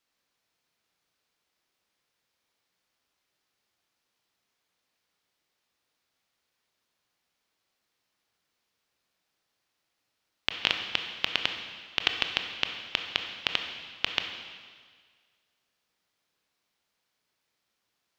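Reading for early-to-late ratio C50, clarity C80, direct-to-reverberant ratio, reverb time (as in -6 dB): 6.0 dB, 7.5 dB, 4.5 dB, 1.7 s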